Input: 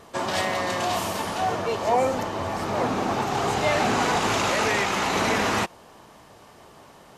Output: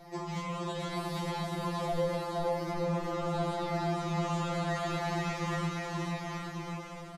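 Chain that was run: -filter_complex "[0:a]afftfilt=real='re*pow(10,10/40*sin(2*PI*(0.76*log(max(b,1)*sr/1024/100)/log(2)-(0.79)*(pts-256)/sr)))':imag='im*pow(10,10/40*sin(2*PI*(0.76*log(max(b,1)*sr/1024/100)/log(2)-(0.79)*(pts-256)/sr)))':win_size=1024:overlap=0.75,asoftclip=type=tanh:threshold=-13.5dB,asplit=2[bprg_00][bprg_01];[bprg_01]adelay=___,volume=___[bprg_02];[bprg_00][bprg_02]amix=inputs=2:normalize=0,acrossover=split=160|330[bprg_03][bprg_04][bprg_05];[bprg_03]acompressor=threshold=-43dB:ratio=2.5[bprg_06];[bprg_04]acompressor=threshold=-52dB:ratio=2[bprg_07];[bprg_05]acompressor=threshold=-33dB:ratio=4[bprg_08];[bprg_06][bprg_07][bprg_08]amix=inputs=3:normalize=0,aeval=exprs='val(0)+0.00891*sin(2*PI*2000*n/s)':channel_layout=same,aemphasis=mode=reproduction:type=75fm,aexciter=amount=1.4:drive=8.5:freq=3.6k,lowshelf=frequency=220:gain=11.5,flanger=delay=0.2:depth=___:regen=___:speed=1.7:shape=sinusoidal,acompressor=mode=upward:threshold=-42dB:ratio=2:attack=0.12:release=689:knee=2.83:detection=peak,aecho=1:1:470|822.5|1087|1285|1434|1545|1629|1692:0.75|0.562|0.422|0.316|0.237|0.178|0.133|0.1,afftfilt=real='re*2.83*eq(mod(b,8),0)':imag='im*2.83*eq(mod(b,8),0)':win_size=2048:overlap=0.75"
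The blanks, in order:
19, -6dB, 8.6, -63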